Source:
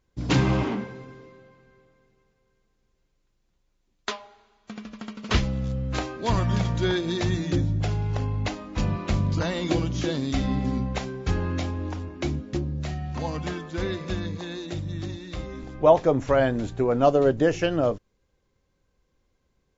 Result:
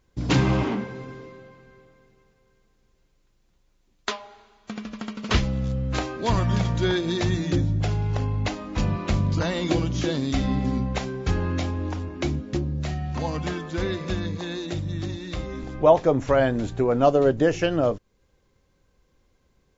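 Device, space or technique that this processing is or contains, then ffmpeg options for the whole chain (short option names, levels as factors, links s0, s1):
parallel compression: -filter_complex "[0:a]asplit=2[s0][s1];[s1]acompressor=threshold=0.0126:ratio=6,volume=0.944[s2];[s0][s2]amix=inputs=2:normalize=0"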